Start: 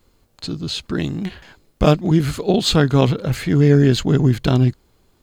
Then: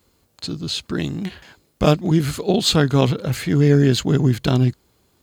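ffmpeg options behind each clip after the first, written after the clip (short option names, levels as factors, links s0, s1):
-af "highpass=61,highshelf=f=4500:g=5,volume=0.841"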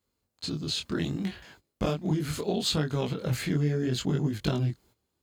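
-af "acompressor=threshold=0.112:ratio=6,flanger=delay=19.5:depth=7.2:speed=0.69,agate=range=0.224:threshold=0.00224:ratio=16:detection=peak,volume=0.794"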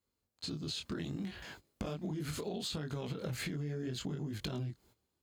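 -af "dynaudnorm=f=370:g=7:m=3.76,alimiter=limit=0.158:level=0:latency=1:release=178,acompressor=threshold=0.0316:ratio=6,volume=0.501"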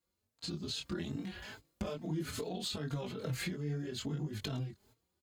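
-filter_complex "[0:a]asplit=2[s0][s1];[s1]adelay=3.9,afreqshift=2.4[s2];[s0][s2]amix=inputs=2:normalize=1,volume=1.5"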